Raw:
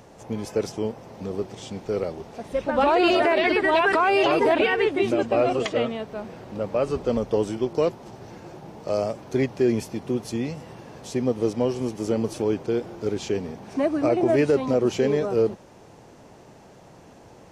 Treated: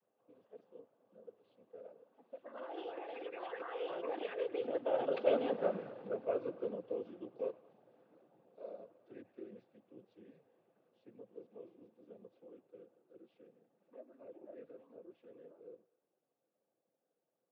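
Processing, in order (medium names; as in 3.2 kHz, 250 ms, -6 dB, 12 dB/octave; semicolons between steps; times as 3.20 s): Doppler pass-by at 5.62 s, 30 m/s, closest 4.8 m; distance through air 100 m; feedback echo behind a band-pass 107 ms, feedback 54%, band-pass 1.3 kHz, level -15.5 dB; noise-vocoded speech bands 16; cabinet simulation 240–3300 Hz, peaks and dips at 520 Hz +8 dB, 920 Hz -5 dB, 2.1 kHz -6 dB; trim -1.5 dB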